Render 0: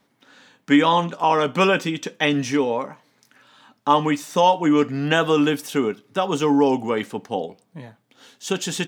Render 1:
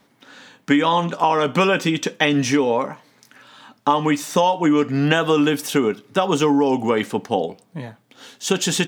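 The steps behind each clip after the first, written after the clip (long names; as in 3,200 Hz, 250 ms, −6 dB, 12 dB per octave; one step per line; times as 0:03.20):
downward compressor 6 to 1, threshold −20 dBFS, peak gain reduction 9 dB
level +6.5 dB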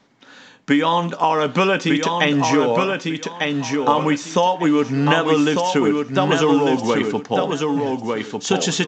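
repeating echo 1,199 ms, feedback 22%, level −4 dB
mu-law 128 kbit/s 16,000 Hz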